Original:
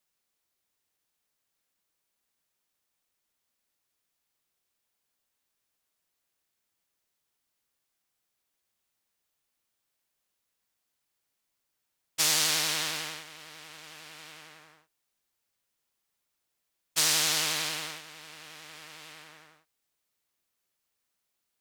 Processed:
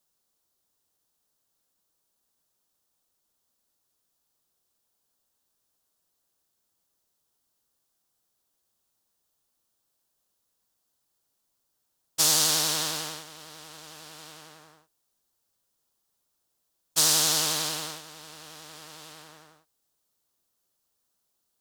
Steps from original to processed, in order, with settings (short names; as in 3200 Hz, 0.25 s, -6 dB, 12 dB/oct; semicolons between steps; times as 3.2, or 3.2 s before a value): bell 2200 Hz -11.5 dB 0.94 oct; gain +5 dB